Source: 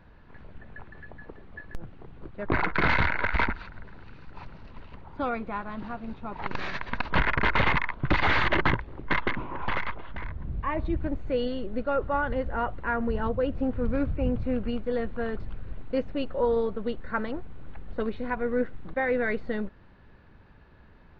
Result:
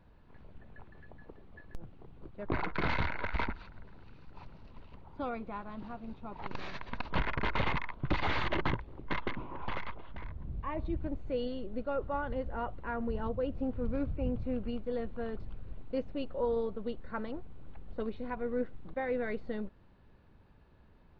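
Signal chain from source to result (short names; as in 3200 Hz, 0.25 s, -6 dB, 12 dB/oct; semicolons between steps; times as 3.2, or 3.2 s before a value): bell 1700 Hz -6 dB 0.92 oct; gain -6.5 dB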